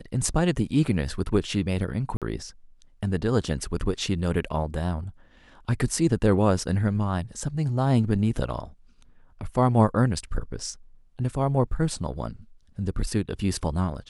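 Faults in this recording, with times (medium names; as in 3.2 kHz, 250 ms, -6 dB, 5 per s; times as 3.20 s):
2.17–2.22 s: dropout 47 ms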